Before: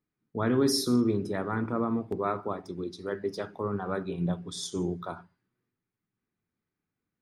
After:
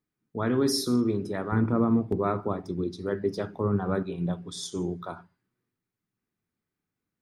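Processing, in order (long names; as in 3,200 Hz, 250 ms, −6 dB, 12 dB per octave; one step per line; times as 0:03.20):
0:01.52–0:04.03: low-shelf EQ 320 Hz +10 dB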